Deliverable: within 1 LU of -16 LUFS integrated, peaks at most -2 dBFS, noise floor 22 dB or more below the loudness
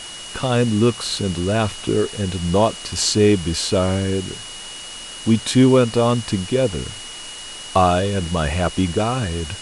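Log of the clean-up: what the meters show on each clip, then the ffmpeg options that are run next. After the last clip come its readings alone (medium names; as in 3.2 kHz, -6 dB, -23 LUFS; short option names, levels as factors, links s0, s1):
steady tone 2.9 kHz; tone level -35 dBFS; noise floor -34 dBFS; noise floor target -42 dBFS; loudness -19.5 LUFS; peak level -3.5 dBFS; loudness target -16.0 LUFS
-> -af "bandreject=f=2900:w=30"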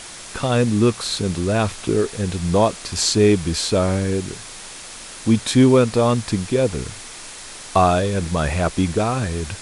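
steady tone not found; noise floor -37 dBFS; noise floor target -42 dBFS
-> -af "afftdn=nr=6:nf=-37"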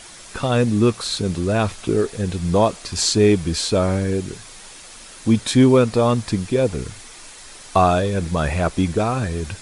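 noise floor -41 dBFS; noise floor target -42 dBFS
-> -af "afftdn=nr=6:nf=-41"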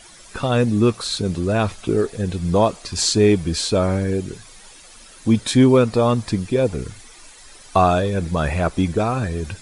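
noise floor -45 dBFS; loudness -19.5 LUFS; peak level -3.5 dBFS; loudness target -16.0 LUFS
-> -af "volume=1.5,alimiter=limit=0.794:level=0:latency=1"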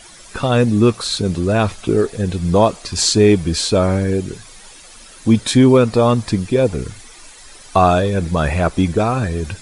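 loudness -16.0 LUFS; peak level -2.0 dBFS; noise floor -41 dBFS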